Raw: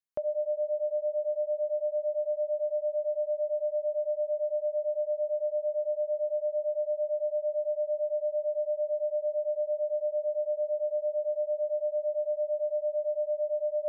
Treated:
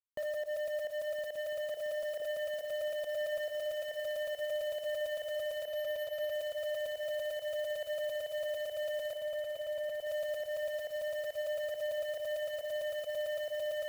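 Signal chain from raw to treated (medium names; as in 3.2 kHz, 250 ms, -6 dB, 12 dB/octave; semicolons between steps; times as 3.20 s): spectral sustain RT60 0.44 s; 1.77–2.22 s: high-pass 400 Hz 12 dB/octave; word length cut 8-bit, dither none; volume shaper 138 bpm, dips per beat 1, -22 dB, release 108 ms; hard clipper -33 dBFS, distortion -9 dB; 9.15–10.07 s: distance through air 340 m; on a send: echo with a slow build-up 169 ms, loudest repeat 8, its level -13.5 dB; 5.65–6.34 s: on the sum: careless resampling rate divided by 3×, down filtered, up hold; trim -1.5 dB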